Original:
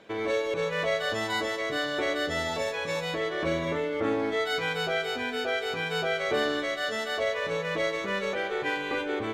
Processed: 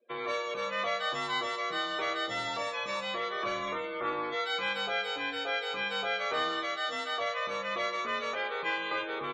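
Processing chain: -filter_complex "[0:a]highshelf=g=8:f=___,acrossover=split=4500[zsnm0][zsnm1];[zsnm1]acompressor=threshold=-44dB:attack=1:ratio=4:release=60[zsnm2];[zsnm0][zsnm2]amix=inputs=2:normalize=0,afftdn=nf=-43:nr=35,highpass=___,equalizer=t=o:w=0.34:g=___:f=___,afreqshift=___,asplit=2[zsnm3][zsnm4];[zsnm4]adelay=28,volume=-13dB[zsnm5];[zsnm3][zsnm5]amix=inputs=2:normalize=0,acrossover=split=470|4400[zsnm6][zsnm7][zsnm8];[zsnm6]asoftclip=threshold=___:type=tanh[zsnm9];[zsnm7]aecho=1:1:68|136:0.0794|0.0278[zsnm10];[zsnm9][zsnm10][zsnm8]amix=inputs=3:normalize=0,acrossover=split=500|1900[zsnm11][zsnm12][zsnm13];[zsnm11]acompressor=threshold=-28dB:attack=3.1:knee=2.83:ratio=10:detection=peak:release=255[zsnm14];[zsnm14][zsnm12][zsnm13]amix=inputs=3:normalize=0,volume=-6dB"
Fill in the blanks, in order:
2.4k, 48, 10.5, 1.1k, 35, -36dB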